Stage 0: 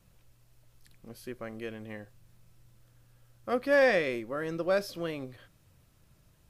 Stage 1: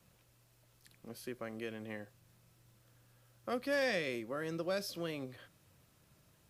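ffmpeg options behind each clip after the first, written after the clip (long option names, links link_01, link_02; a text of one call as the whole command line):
ffmpeg -i in.wav -filter_complex "[0:a]acrossover=split=210|3000[link_01][link_02][link_03];[link_02]acompressor=threshold=-41dB:ratio=2[link_04];[link_01][link_04][link_03]amix=inputs=3:normalize=0,highpass=frequency=160:poles=1" out.wav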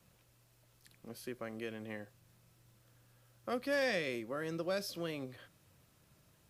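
ffmpeg -i in.wav -af anull out.wav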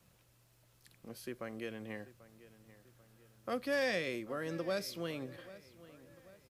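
ffmpeg -i in.wav -filter_complex "[0:a]asplit=2[link_01][link_02];[link_02]adelay=789,lowpass=frequency=3500:poles=1,volume=-17.5dB,asplit=2[link_03][link_04];[link_04]adelay=789,lowpass=frequency=3500:poles=1,volume=0.47,asplit=2[link_05][link_06];[link_06]adelay=789,lowpass=frequency=3500:poles=1,volume=0.47,asplit=2[link_07][link_08];[link_08]adelay=789,lowpass=frequency=3500:poles=1,volume=0.47[link_09];[link_01][link_03][link_05][link_07][link_09]amix=inputs=5:normalize=0" out.wav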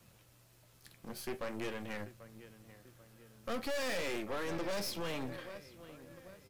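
ffmpeg -i in.wav -af "flanger=delay=8.5:depth=5.5:regen=67:speed=0.44:shape=triangular,aeval=exprs='(tanh(282*val(0)+0.8)-tanh(0.8))/282':channel_layout=same,volume=14dB" out.wav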